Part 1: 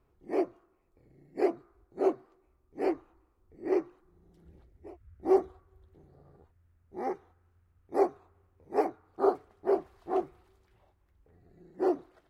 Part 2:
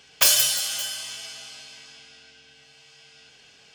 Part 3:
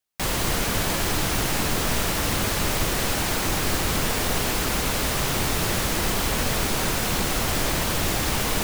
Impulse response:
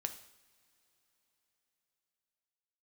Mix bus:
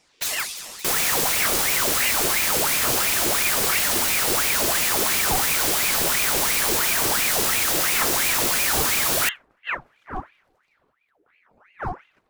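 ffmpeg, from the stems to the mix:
-filter_complex "[0:a]volume=1.5dB[link_01];[1:a]highpass=1100,volume=-6dB[link_02];[2:a]highshelf=frequency=4300:gain=11,adelay=650,volume=2.5dB[link_03];[link_01][link_02][link_03]amix=inputs=3:normalize=0,asoftclip=type=tanh:threshold=-11dB,aeval=exprs='val(0)*sin(2*PI*1400*n/s+1400*0.75/2.9*sin(2*PI*2.9*n/s))':channel_layout=same"

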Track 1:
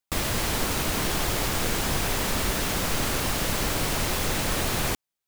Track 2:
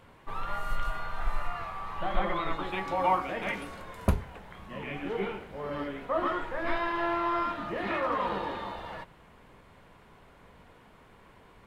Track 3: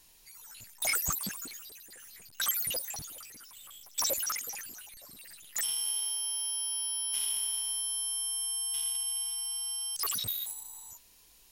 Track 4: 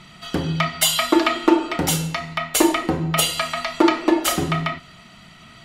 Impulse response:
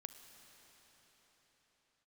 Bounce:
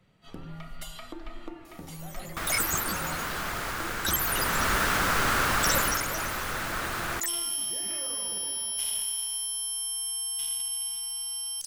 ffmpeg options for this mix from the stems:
-filter_complex "[0:a]equalizer=frequency=1400:width_type=o:width=1.1:gain=13.5,adelay=2250,volume=-3dB,afade=type=in:start_time=4.16:duration=0.58:silence=0.398107,afade=type=out:start_time=5.75:duration=0.28:silence=0.446684[link_01];[1:a]equalizer=frequency=1100:width=1.8:gain=-9.5,volume=-12dB[link_02];[2:a]adelay=1650,volume=0.5dB,asplit=2[link_03][link_04];[link_04]volume=-11dB[link_05];[3:a]agate=range=-10dB:threshold=-35dB:ratio=16:detection=peak,lowshelf=frequency=470:gain=10,acompressor=threshold=-22dB:ratio=6,volume=-18.5dB[link_06];[4:a]atrim=start_sample=2205[link_07];[link_05][link_07]afir=irnorm=-1:irlink=0[link_08];[link_01][link_02][link_03][link_06][link_08]amix=inputs=5:normalize=0"

